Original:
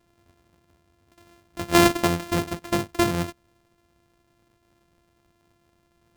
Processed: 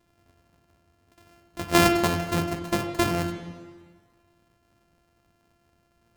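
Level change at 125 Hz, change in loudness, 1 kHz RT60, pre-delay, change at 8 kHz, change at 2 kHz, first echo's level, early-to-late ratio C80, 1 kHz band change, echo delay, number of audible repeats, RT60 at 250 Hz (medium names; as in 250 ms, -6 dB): 0.0 dB, -1.5 dB, 1.6 s, 19 ms, -2.0 dB, -0.5 dB, no echo, 9.0 dB, -0.5 dB, no echo, no echo, 1.5 s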